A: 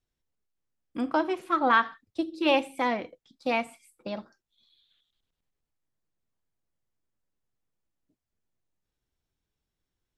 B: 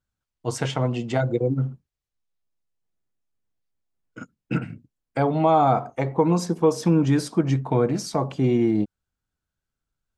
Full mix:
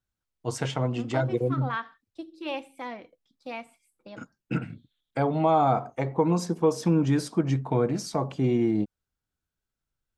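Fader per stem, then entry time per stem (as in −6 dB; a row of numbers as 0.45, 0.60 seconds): −10.0, −3.5 decibels; 0.00, 0.00 seconds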